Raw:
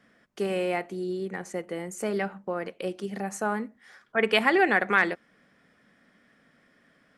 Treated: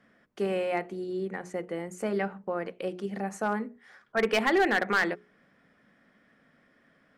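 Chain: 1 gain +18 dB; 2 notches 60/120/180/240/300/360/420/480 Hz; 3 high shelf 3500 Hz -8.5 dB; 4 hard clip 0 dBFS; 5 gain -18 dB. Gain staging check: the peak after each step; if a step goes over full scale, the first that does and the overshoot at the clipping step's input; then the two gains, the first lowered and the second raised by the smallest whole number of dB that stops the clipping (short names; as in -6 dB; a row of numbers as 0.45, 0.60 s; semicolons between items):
+11.0, +11.0, +9.5, 0.0, -18.0 dBFS; step 1, 9.5 dB; step 1 +8 dB, step 5 -8 dB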